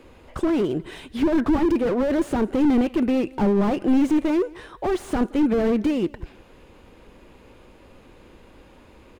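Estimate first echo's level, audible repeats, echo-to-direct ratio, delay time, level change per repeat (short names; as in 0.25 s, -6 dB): -24.0 dB, 2, -23.5 dB, 0.173 s, -9.5 dB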